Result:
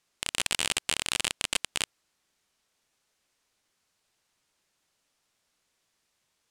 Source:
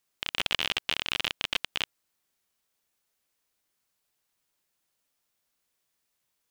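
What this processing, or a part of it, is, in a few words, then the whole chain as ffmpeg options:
overflowing digital effects unit: -af "aeval=exprs='(mod(5.96*val(0)+1,2)-1)/5.96':c=same,lowpass=8600,volume=2"

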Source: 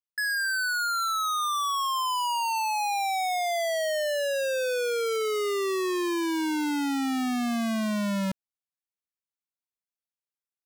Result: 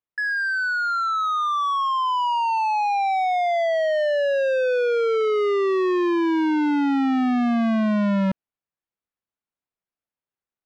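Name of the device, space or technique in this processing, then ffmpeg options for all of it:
phone in a pocket: -af "lowpass=3200,highshelf=f=2200:g=-9,volume=2.37"

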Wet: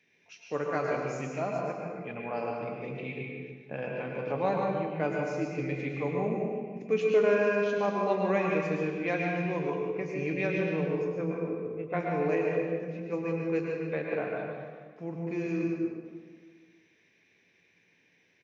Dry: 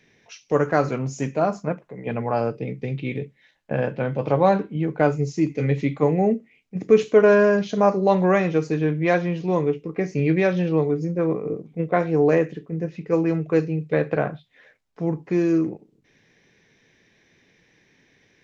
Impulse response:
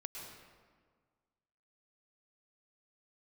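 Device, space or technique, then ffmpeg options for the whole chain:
PA in a hall: -filter_complex "[0:a]highpass=f=190:p=1,equalizer=f=2500:t=o:w=0.5:g=7.5,aecho=1:1:148:0.335[s0];[1:a]atrim=start_sample=2205[s1];[s0][s1]afir=irnorm=-1:irlink=0,volume=0.447"

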